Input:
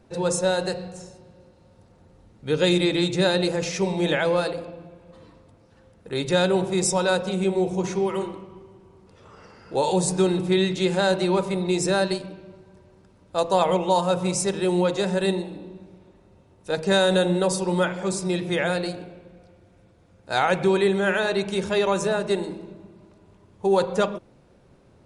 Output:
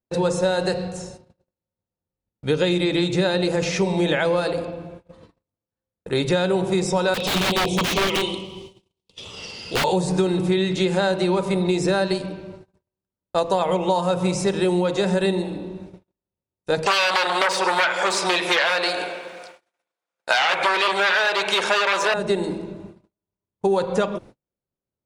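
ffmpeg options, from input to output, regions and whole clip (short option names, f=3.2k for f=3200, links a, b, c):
-filter_complex "[0:a]asettb=1/sr,asplit=3[a][b][c];[a]atrim=end=7.144[d];[b]atrim=start=7.14:end=9.84,asetpts=PTS-STARTPTS,afade=t=in:d=0.004:c=qsin,afade=t=out:st=2.696:d=0.004:c=qsin,highshelf=f=2.2k:t=q:w=3:g=12.5,bandreject=f=50:t=h:w=6,bandreject=f=100:t=h:w=6,bandreject=f=150:t=h:w=6,bandreject=f=200:t=h:w=6,bandreject=f=250:t=h:w=6,bandreject=f=300:t=h:w=6,bandreject=f=350:t=h:w=6,aeval=exprs='(mod(7.94*val(0)+1,2)-1)/7.94':c=same[e];[c]atrim=start=9.836[f];[d][e]acrossfade=d=0.004:c1=hsin:c2=qsin[g];[g][f]acrossfade=d=0.004:c1=qsin:c2=hsin,asettb=1/sr,asplit=3[h][i][j];[h]atrim=end=16.864[k];[i]atrim=start=16.86:end=22.14,asetpts=PTS-STARTPTS,afade=t=in:d=0.004:c=qsin,afade=t=out:st=5.276:d=0.004:c=qsin,aeval=exprs='0.398*sin(PI/2*3.98*val(0)/0.398)':c=same,highpass=910[l];[j]atrim=start=22.136[m];[k][l]acrossfade=d=0.004:c1=hsin:c2=qsin[n];[n][m]acrossfade=d=0.004:c1=qsin:c2=hsin,acrossover=split=4400[o][p];[p]acompressor=threshold=-39dB:ratio=4:attack=1:release=60[q];[o][q]amix=inputs=2:normalize=0,agate=range=-42dB:threshold=-46dB:ratio=16:detection=peak,acompressor=threshold=-24dB:ratio=6,volume=7dB"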